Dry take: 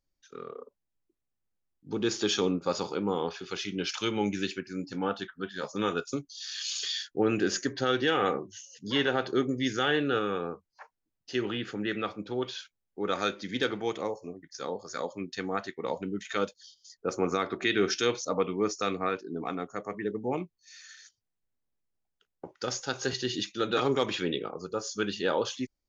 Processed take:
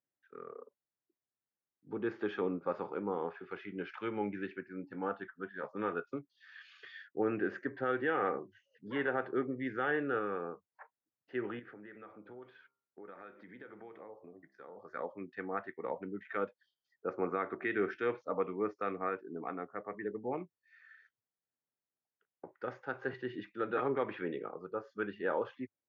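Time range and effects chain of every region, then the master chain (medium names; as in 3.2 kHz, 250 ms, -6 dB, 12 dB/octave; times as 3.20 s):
11.59–14.77 s: band-stop 2.7 kHz, Q 24 + compression 5:1, threshold -41 dBFS + de-hum 66.49 Hz, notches 21
whole clip: elliptic band-pass 100–1900 Hz, stop band 80 dB; bass shelf 230 Hz -8 dB; trim -4 dB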